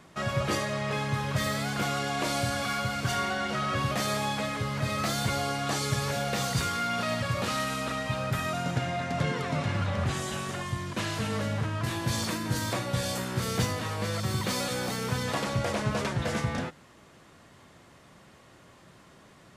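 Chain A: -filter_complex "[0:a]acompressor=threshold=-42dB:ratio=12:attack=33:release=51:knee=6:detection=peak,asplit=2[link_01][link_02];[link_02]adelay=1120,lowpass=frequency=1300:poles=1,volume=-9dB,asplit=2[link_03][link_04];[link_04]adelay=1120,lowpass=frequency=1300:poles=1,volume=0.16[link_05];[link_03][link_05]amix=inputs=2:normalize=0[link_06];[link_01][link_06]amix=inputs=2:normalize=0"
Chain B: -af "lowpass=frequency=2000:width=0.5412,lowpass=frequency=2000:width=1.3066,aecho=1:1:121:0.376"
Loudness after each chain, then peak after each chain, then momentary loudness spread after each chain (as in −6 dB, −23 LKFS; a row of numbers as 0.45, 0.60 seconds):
−40.0, −30.5 LKFS; −25.5, −15.5 dBFS; 10, 3 LU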